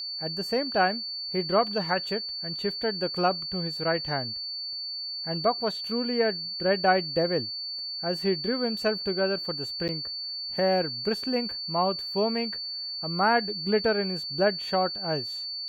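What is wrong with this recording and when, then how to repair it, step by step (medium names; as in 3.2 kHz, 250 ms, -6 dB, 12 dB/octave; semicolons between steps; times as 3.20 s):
whine 4.5 kHz -32 dBFS
9.88–9.89 s: dropout 9 ms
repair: band-stop 4.5 kHz, Q 30; interpolate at 9.88 s, 9 ms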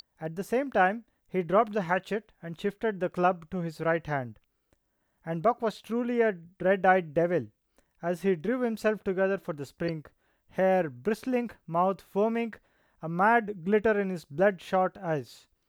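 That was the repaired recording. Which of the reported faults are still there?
nothing left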